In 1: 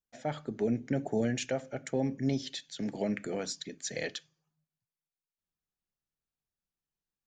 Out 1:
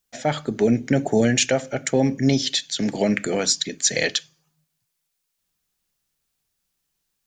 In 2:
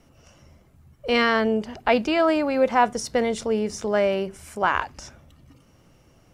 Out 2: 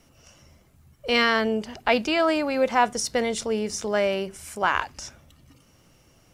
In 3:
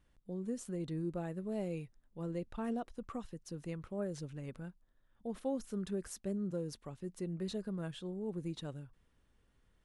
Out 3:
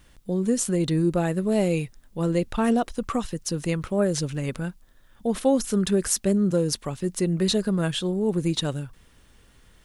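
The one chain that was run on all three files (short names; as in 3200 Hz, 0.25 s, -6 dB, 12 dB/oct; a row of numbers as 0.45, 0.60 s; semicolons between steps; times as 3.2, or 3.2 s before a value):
high shelf 2200 Hz +8 dB; normalise peaks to -6 dBFS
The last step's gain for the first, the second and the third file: +11.0, -3.0, +15.5 dB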